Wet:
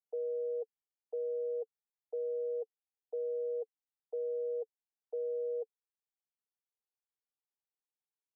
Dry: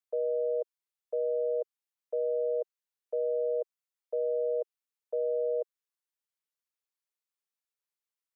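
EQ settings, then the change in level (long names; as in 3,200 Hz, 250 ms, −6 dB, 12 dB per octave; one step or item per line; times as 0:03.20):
pair of resonant band-passes 590 Hz, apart 0.81 octaves
0.0 dB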